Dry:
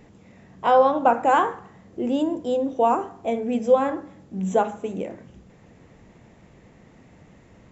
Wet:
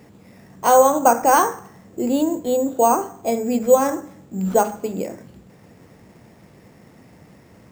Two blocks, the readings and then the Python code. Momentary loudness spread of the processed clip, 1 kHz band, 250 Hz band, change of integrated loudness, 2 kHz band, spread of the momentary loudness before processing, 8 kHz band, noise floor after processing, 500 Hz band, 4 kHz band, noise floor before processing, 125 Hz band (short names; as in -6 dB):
16 LU, +3.5 dB, +3.5 dB, +3.5 dB, +3.0 dB, 16 LU, n/a, -49 dBFS, +3.5 dB, +3.0 dB, -52 dBFS, +3.5 dB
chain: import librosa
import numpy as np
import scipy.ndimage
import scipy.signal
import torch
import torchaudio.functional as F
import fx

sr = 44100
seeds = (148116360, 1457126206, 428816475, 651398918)

y = scipy.signal.sosfilt(scipy.signal.butter(2, 78.0, 'highpass', fs=sr, output='sos'), x)
y = np.repeat(y[::6], 6)[:len(y)]
y = y * 10.0 ** (3.5 / 20.0)